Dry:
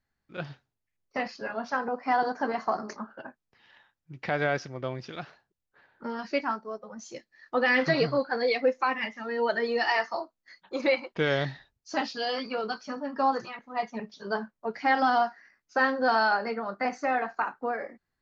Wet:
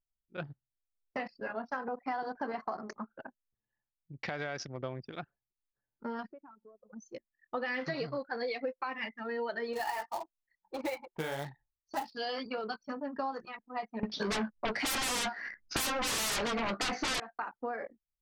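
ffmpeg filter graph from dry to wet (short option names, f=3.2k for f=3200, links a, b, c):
-filter_complex "[0:a]asettb=1/sr,asplit=3[a][b][c];[a]atrim=end=4.234[d];[b]atrim=start=4.23:end=4.82,asetpts=PTS-STARTPTS,afade=t=in:d=0.004:c=qsin,afade=t=out:st=0.586:d=0.004:c=qsin,highshelf=f=3.4k:g=10,acompressor=threshold=-29dB:ratio=2:attack=3.2:release=140:knee=1:detection=peak[e];[c]atrim=start=4.816[f];[d][e]acrossfade=d=0.004:c1=hsin:c2=qsin[g];[g][f]acrossfade=d=0.004:c1=qsin:c2=hsin,asettb=1/sr,asplit=3[h][i][j];[h]atrim=end=6.274[k];[i]atrim=start=6.27:end=6.93,asetpts=PTS-STARTPTS,afade=t=in:d=0.004:c=qsin,afade=t=out:st=0.656:d=0.004:c=qsin,highshelf=f=2.8k:g=-10.5,acompressor=threshold=-45dB:ratio=4:attack=3.2:release=140:knee=1:detection=peak[l];[j]atrim=start=6.926[m];[k][l]acrossfade=d=0.004:c1=hsin:c2=qsin[n];[n][m]acrossfade=d=0.004:c1=qsin:c2=hsin,asettb=1/sr,asplit=3[o][p][q];[o]atrim=end=9.734[r];[p]atrim=start=9.73:end=12.13,asetpts=PTS-STARTPTS,afade=t=in:d=0.004:c=qsin,afade=t=out:st=2.396:d=0.004:c=qsin,flanger=delay=4.7:depth=8.2:regen=-16:speed=1.7:shape=triangular,equalizer=f=850:t=o:w=0.35:g=12.5,acrusher=bits=3:mode=log:mix=0:aa=0.000001[s];[q]atrim=start=12.126[t];[r][s]acrossfade=d=0.004:c1=hsin:c2=qsin[u];[u][t]acrossfade=d=0.004:c1=qsin:c2=hsin,asettb=1/sr,asplit=3[v][w][x];[v]atrim=end=14.034[y];[w]atrim=start=14.03:end=17.2,asetpts=PTS-STARTPTS,afade=t=in:d=0.004:c=qsin,afade=t=out:st=3.166:d=0.004:c=qsin,lowpass=f=5k:w=0.5412,lowpass=f=5k:w=1.3066,aeval=exprs='0.211*sin(PI/2*8.91*val(0)/0.211)':c=same,asplit=2[z][aa];[aa]adelay=14,volume=-12.5dB[ab];[z][ab]amix=inputs=2:normalize=0,atrim=end_sample=139797[ac];[x]atrim=start=17.196[ad];[y][ac]acrossfade=d=0.004:c1=hsin:c2=qsin[ae];[ae][ad]acrossfade=d=0.004:c1=qsin:c2=hsin,anlmdn=0.631,acompressor=threshold=-30dB:ratio=6,volume=-2.5dB"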